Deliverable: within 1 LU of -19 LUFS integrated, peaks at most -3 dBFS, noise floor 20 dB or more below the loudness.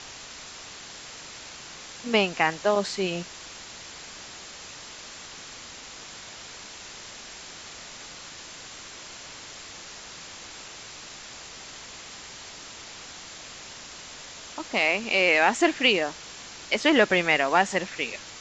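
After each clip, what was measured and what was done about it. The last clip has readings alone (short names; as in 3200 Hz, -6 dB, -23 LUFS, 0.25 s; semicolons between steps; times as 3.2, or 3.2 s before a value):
noise floor -43 dBFS; noise floor target -44 dBFS; loudness -23.5 LUFS; peak -6.0 dBFS; loudness target -19.0 LUFS
-> noise print and reduce 6 dB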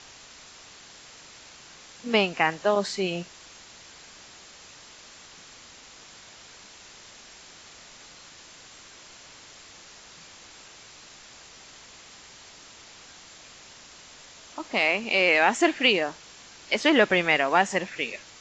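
noise floor -49 dBFS; loudness -23.0 LUFS; peak -6.0 dBFS; loudness target -19.0 LUFS
-> gain +4 dB; limiter -3 dBFS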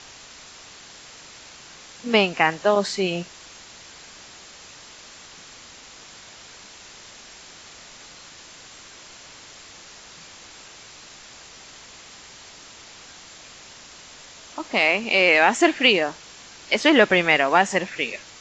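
loudness -19.0 LUFS; peak -3.0 dBFS; noise floor -45 dBFS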